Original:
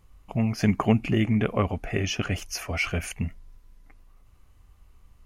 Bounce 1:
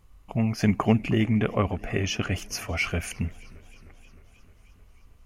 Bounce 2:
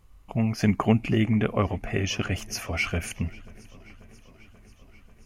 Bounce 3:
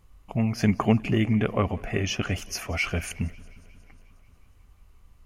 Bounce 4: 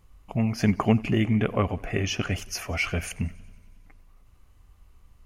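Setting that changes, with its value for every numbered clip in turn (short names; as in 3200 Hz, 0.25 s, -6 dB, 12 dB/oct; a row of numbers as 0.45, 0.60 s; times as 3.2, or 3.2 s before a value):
warbling echo, time: 310, 537, 180, 92 ms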